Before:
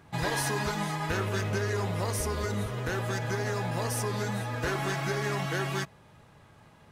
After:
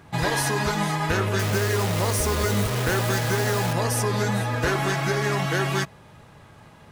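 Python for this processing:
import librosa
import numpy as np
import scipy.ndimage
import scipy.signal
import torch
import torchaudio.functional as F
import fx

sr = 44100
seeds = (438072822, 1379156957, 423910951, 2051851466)

y = fx.rider(x, sr, range_db=10, speed_s=0.5)
y = fx.quant_dither(y, sr, seeds[0], bits=6, dither='none', at=(1.39, 3.73))
y = y * 10.0 ** (7.0 / 20.0)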